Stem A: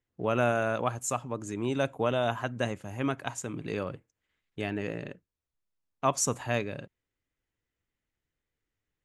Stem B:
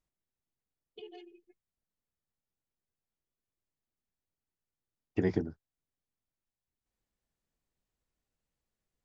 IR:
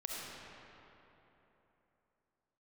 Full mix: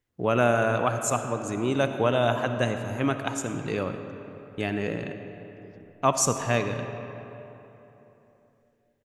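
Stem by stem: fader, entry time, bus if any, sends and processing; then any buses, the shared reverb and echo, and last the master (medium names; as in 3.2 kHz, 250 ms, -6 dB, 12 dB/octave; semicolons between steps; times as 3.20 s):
+1.5 dB, 0.00 s, send -5 dB, none
-16.0 dB, 0.40 s, no send, peak limiter -26 dBFS, peak gain reduction 10.5 dB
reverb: on, RT60 3.4 s, pre-delay 25 ms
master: none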